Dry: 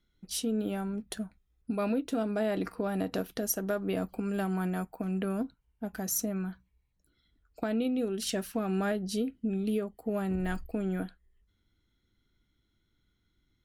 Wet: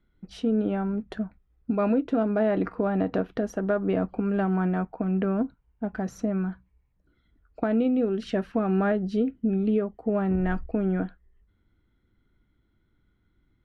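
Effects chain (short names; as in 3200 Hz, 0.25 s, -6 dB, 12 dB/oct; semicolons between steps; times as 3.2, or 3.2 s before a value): LPF 1800 Hz 12 dB/oct; gain +6.5 dB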